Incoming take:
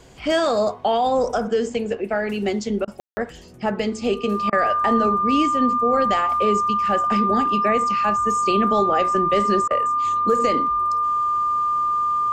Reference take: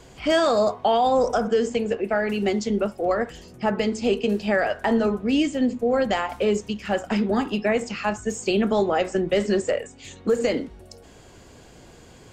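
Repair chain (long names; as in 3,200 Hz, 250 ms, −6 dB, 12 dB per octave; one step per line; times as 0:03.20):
notch filter 1,200 Hz, Q 30
ambience match 0:03.00–0:03.17
repair the gap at 0:02.85/0:04.50/0:09.68, 25 ms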